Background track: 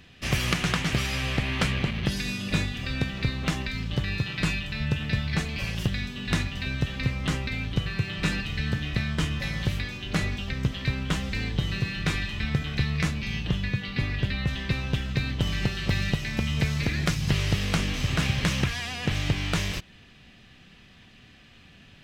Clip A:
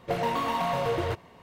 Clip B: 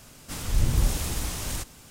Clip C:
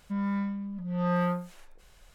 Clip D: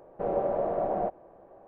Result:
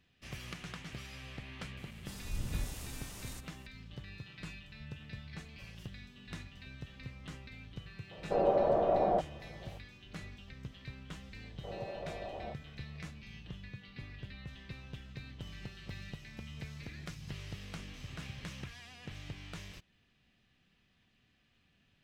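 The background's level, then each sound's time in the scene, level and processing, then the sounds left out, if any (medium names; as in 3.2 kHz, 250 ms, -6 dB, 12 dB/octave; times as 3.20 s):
background track -19.5 dB
1.77 s: add B -15 dB
8.11 s: add D
11.44 s: add D -15 dB
not used: A, C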